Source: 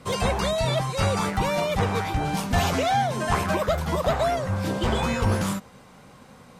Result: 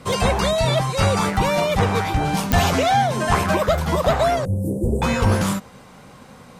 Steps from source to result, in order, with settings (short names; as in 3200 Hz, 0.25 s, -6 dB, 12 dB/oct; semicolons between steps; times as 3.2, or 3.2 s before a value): 4.45–5.02 elliptic band-stop 460–9400 Hz, stop band 70 dB; pops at 2.52, -8 dBFS; gain +5 dB